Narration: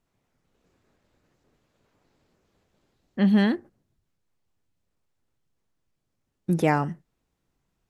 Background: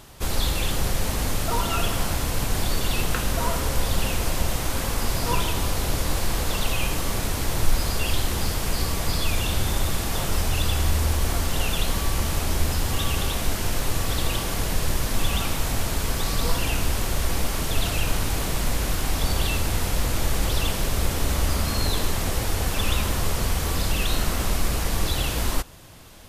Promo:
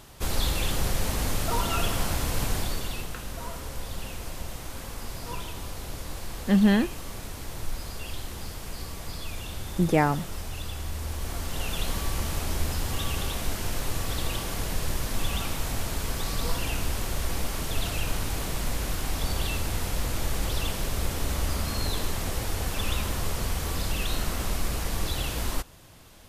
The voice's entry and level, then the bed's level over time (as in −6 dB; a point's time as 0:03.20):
3.30 s, 0.0 dB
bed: 0:02.48 −2.5 dB
0:03.13 −12 dB
0:10.89 −12 dB
0:11.87 −5 dB